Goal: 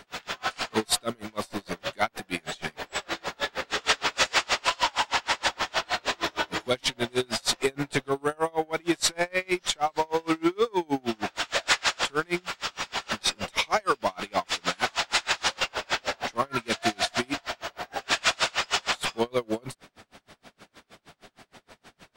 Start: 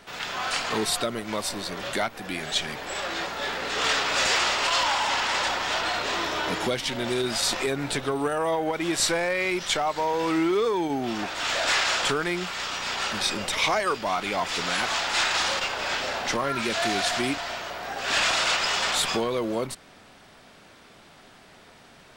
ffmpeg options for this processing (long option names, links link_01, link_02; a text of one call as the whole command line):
ffmpeg -i in.wav -af "aeval=exprs='val(0)*pow(10,-35*(0.5-0.5*cos(2*PI*6.4*n/s))/20)':channel_layout=same,volume=4.5dB" out.wav